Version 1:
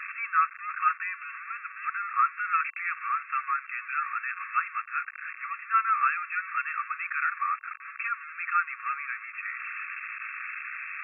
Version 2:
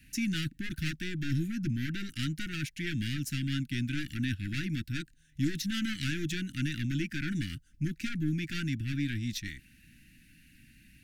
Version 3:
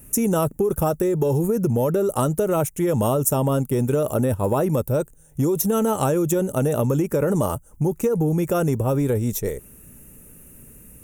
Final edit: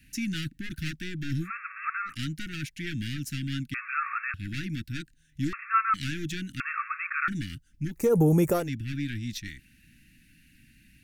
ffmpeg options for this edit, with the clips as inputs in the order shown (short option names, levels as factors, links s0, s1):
-filter_complex "[0:a]asplit=4[s0][s1][s2][s3];[1:a]asplit=6[s4][s5][s6][s7][s8][s9];[s4]atrim=end=1.51[s10];[s0]atrim=start=1.41:end=2.15[s11];[s5]atrim=start=2.05:end=3.742[s12];[s1]atrim=start=3.738:end=4.342[s13];[s6]atrim=start=4.338:end=5.532[s14];[s2]atrim=start=5.528:end=5.942[s15];[s7]atrim=start=5.938:end=6.602[s16];[s3]atrim=start=6.598:end=7.282[s17];[s8]atrim=start=7.278:end=8.13[s18];[2:a]atrim=start=7.89:end=8.7[s19];[s9]atrim=start=8.46[s20];[s10][s11]acrossfade=d=0.1:c1=tri:c2=tri[s21];[s21][s12]acrossfade=d=0.1:c1=tri:c2=tri[s22];[s22][s13]acrossfade=d=0.004:c1=hsin:c2=hsin[s23];[s23][s14]acrossfade=d=0.004:c1=hsin:c2=hsin[s24];[s24][s15]acrossfade=d=0.004:c1=hsin:c2=hsin[s25];[s25][s16]acrossfade=d=0.004:c1=hsin:c2=hsin[s26];[s26][s17]acrossfade=d=0.004:c1=hsin:c2=hsin[s27];[s27][s18]acrossfade=d=0.004:c1=hsin:c2=hsin[s28];[s28][s19]acrossfade=d=0.24:c1=tri:c2=tri[s29];[s29][s20]acrossfade=d=0.24:c1=tri:c2=tri"